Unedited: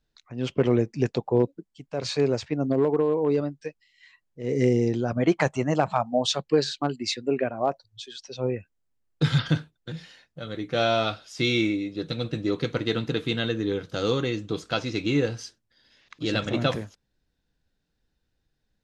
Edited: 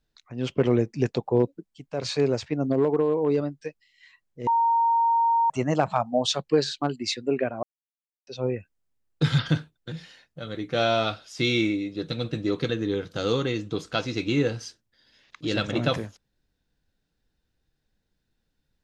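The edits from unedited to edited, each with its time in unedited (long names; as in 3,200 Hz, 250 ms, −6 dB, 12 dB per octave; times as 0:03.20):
0:04.47–0:05.50: beep over 925 Hz −18 dBFS
0:07.63–0:08.27: silence
0:12.69–0:13.47: remove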